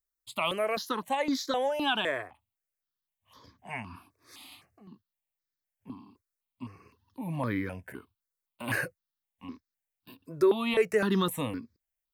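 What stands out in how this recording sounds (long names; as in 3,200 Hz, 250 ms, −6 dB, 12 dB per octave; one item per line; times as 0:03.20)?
notches that jump at a steady rate 3.9 Hz 800–2,800 Hz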